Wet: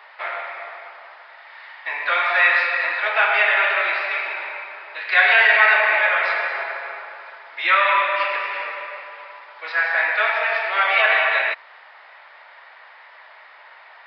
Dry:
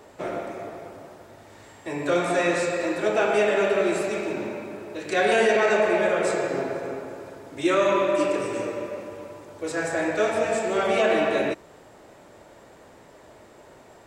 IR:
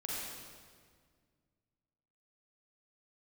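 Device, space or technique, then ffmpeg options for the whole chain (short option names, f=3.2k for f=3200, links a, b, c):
musical greeting card: -af "lowpass=3.7k,aresample=11025,aresample=44100,highpass=f=900:w=0.5412,highpass=f=900:w=1.3066,equalizer=f=2k:t=o:w=0.55:g=7,volume=9dB"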